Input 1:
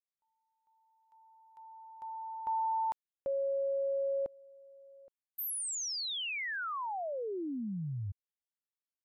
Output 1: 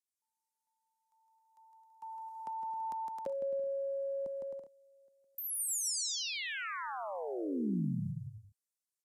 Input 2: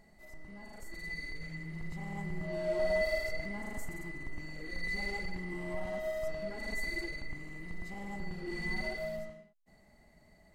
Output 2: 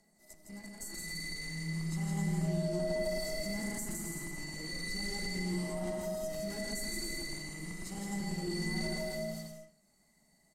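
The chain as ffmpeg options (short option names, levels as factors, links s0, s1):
-filter_complex "[0:a]lowshelf=f=130:t=q:w=1.5:g=-8.5,aphaser=in_gain=1:out_gain=1:delay=1.1:decay=0.27:speed=0.34:type=triangular,acrossover=split=450|4100[s0][s1][s2];[s2]crystalizer=i=6.5:c=0[s3];[s0][s1][s3]amix=inputs=3:normalize=0,agate=range=0.282:threshold=0.00447:ratio=16:release=28:detection=rms,asplit=2[s4][s5];[s5]aecho=0:1:160|264|331.6|375.5|404.1:0.631|0.398|0.251|0.158|0.1[s6];[s4][s6]amix=inputs=2:normalize=0,acrossover=split=340[s7][s8];[s8]acompressor=threshold=0.00562:ratio=2.5:attack=33:release=30:knee=2.83:detection=peak[s9];[s7][s9]amix=inputs=2:normalize=0,lowpass=10000"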